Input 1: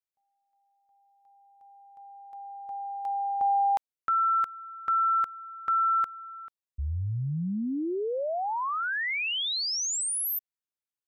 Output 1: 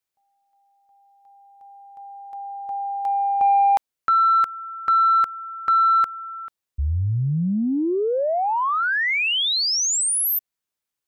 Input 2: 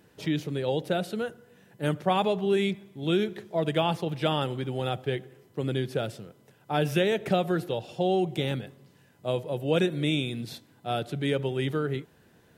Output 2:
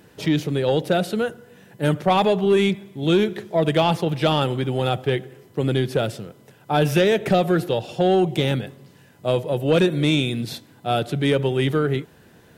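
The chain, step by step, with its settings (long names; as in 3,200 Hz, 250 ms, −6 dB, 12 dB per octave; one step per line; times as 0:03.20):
soft clipping −17 dBFS
level +8.5 dB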